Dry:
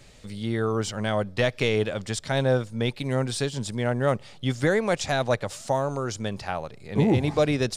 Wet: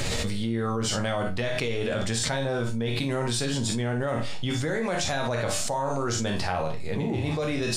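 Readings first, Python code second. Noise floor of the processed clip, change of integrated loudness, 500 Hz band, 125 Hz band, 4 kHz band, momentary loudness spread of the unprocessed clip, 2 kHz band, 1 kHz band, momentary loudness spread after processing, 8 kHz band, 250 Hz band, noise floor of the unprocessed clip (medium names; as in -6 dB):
-28 dBFS, -1.5 dB, -3.5 dB, -2.0 dB, +2.5 dB, 8 LU, -1.0 dB, -0.5 dB, 2 LU, +5.5 dB, -1.5 dB, -47 dBFS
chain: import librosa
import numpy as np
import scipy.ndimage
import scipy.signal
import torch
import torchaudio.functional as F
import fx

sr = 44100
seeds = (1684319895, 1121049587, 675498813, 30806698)

y = fx.resonator_bank(x, sr, root=39, chord='minor', decay_s=0.24)
y = fx.echo_multitap(y, sr, ms=(44, 58), db=(-9.5, -11.5))
y = fx.env_flatten(y, sr, amount_pct=100)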